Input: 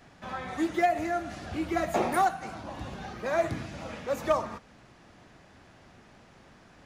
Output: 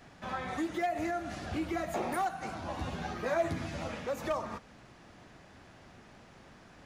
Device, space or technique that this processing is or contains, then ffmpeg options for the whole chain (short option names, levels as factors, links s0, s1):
clipper into limiter: -filter_complex "[0:a]asoftclip=type=hard:threshold=0.126,alimiter=level_in=1.19:limit=0.0631:level=0:latency=1:release=161,volume=0.841,asettb=1/sr,asplit=3[s0][s1][s2];[s0]atrim=end=2.614[s3];[s1]atrim=start=2.61:end=3.88,asetpts=PTS-STARTPTS,afade=t=in:d=0.004:c=qsin,afade=t=out:st=1.266:d=0.004:c=qsin,asplit=2[s4][s5];[s5]adelay=12,volume=0.708[s6];[s4][s6]amix=inputs=2:normalize=0,atrim=end_sample=56007[s7];[s2]atrim=start=3.876[s8];[s3][s7]acrossfade=d=0.004:c1=hsin:c2=qsin[s9];[s9][s8]acrossfade=d=0.004:c1=qsin:c2=hsin"